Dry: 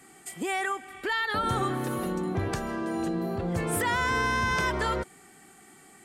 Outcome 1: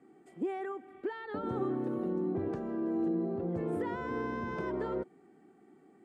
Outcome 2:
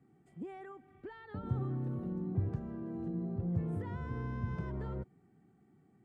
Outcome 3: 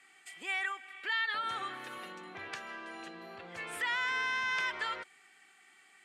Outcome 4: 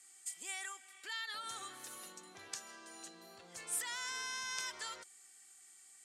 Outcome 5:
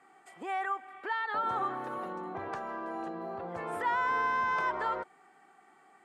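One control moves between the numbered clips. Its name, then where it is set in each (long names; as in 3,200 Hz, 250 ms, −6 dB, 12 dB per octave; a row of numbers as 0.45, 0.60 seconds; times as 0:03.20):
resonant band-pass, frequency: 320, 120, 2,500, 6,700, 940 Hertz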